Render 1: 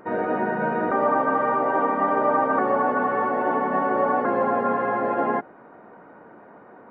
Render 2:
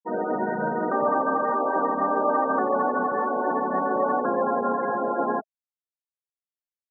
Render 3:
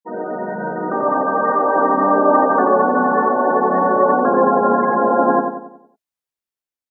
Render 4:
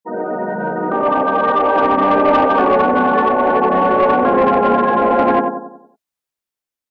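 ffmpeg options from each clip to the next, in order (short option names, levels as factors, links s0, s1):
-filter_complex "[0:a]aemphasis=mode=reproduction:type=50fm,asplit=5[s0][s1][s2][s3][s4];[s1]adelay=221,afreqshift=-40,volume=0.1[s5];[s2]adelay=442,afreqshift=-80,volume=0.0562[s6];[s3]adelay=663,afreqshift=-120,volume=0.0313[s7];[s4]adelay=884,afreqshift=-160,volume=0.0176[s8];[s0][s5][s6][s7][s8]amix=inputs=5:normalize=0,afftfilt=real='re*gte(hypot(re,im),0.0794)':imag='im*gte(hypot(re,im),0.0794)':win_size=1024:overlap=0.75,volume=0.794"
-filter_complex "[0:a]dynaudnorm=f=510:g=5:m=2.66,asplit=2[s0][s1];[s1]adelay=92,lowpass=f=1800:p=1,volume=0.596,asplit=2[s2][s3];[s3]adelay=92,lowpass=f=1800:p=1,volume=0.48,asplit=2[s4][s5];[s5]adelay=92,lowpass=f=1800:p=1,volume=0.48,asplit=2[s6][s7];[s7]adelay=92,lowpass=f=1800:p=1,volume=0.48,asplit=2[s8][s9];[s9]adelay=92,lowpass=f=1800:p=1,volume=0.48,asplit=2[s10][s11];[s11]adelay=92,lowpass=f=1800:p=1,volume=0.48[s12];[s0][s2][s4][s6][s8][s10][s12]amix=inputs=7:normalize=0"
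-af "asoftclip=type=tanh:threshold=0.316,volume=1.5"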